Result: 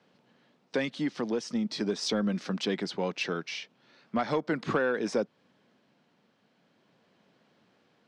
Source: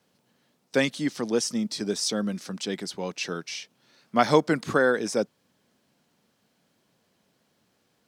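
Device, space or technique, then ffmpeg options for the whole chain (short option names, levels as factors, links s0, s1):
AM radio: -af "highpass=130,lowpass=3500,acompressor=threshold=0.0398:ratio=4,asoftclip=type=tanh:threshold=0.0944,tremolo=f=0.4:d=0.27,volume=1.68"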